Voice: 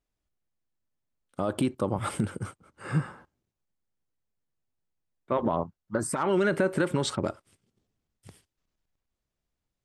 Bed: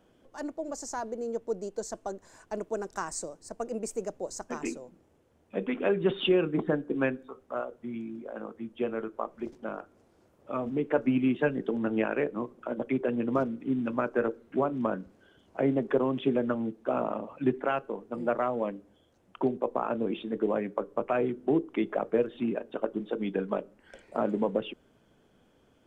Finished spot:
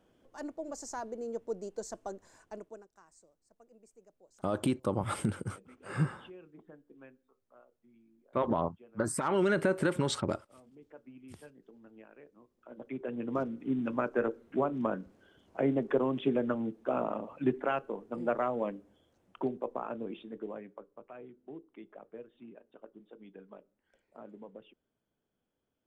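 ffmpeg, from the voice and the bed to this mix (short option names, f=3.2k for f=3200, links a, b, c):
-filter_complex "[0:a]adelay=3050,volume=-3dB[a];[1:a]volume=19.5dB,afade=t=out:st=2.25:d=0.63:silence=0.0794328,afade=t=in:st=12.52:d=1.23:silence=0.0630957,afade=t=out:st=18.69:d=2.27:silence=0.11885[b];[a][b]amix=inputs=2:normalize=0"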